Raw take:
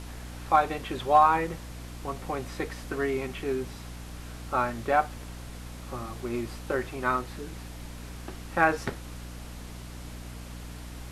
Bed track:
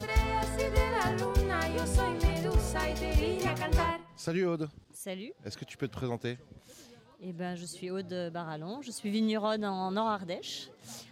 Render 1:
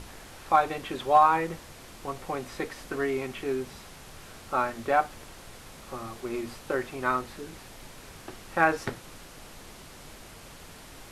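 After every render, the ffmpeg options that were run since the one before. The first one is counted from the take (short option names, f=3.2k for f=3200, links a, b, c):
-af "bandreject=f=60:t=h:w=6,bandreject=f=120:t=h:w=6,bandreject=f=180:t=h:w=6,bandreject=f=240:t=h:w=6,bandreject=f=300:t=h:w=6"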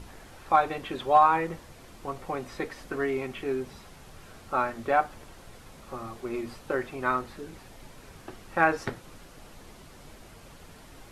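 -af "afftdn=nr=6:nf=-48"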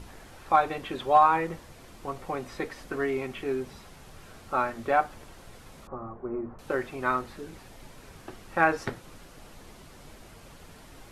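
-filter_complex "[0:a]asettb=1/sr,asplit=3[a][b][c];[a]atrim=end=5.874[d];[b]atrim=start=5.87:end=6.59,asetpts=PTS-STARTPTS,afade=t=in:d=0.004:c=qsin,afade=t=out:st=0.716:d=0.004:c=qsin,lowpass=f=1.3k:w=0.5412,lowpass=f=1.3k:w=1.3066[e];[c]atrim=start=6.586[f];[d][e]acrossfade=d=0.004:c1=hsin:c2=qsin[g];[g][f]acrossfade=d=0.004:c1=qsin:c2=hsin"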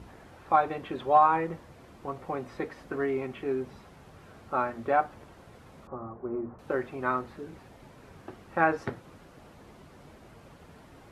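-af "highpass=63,highshelf=f=2.7k:g=-12"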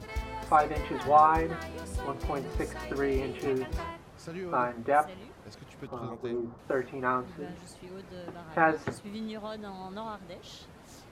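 -filter_complex "[1:a]volume=-8.5dB[a];[0:a][a]amix=inputs=2:normalize=0"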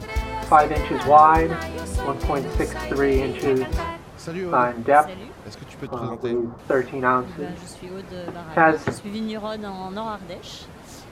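-af "volume=9.5dB,alimiter=limit=-2dB:level=0:latency=1"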